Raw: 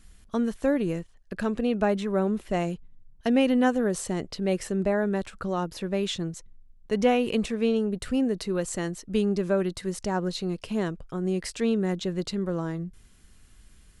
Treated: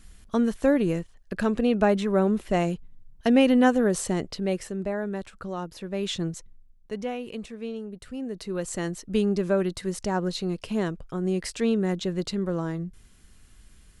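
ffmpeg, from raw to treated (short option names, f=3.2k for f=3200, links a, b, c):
-af "volume=21dB,afade=t=out:st=4.12:d=0.61:silence=0.421697,afade=t=in:st=5.9:d=0.36:silence=0.446684,afade=t=out:st=6.26:d=0.79:silence=0.237137,afade=t=in:st=8.18:d=0.72:silence=0.281838"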